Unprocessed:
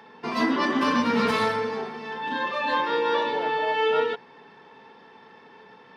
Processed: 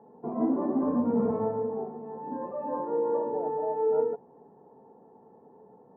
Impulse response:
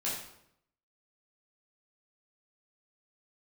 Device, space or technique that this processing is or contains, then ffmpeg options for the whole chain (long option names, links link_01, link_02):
under water: -af "lowpass=frequency=730:width=0.5412,lowpass=frequency=730:width=1.3066,equalizer=frequency=760:width_type=o:width=0.21:gain=5,volume=-1.5dB"